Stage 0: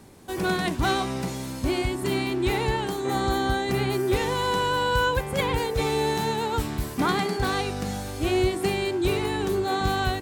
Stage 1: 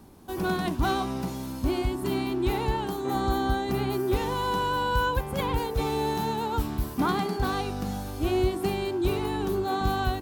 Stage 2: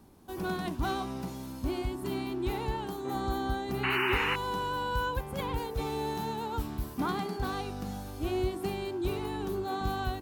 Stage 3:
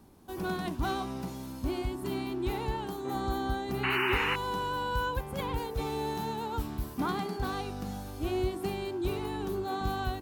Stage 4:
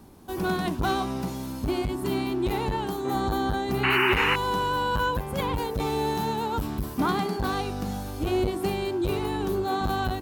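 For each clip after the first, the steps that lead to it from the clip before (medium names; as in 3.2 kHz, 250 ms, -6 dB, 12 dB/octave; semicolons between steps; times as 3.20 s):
graphic EQ 125/500/2000/4000/8000 Hz -6/-7/-10/-4/-10 dB; trim +2.5 dB
painted sound noise, 3.83–4.36 s, 830–3000 Hz -24 dBFS; trim -6 dB
no audible change
transformer saturation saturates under 370 Hz; trim +7 dB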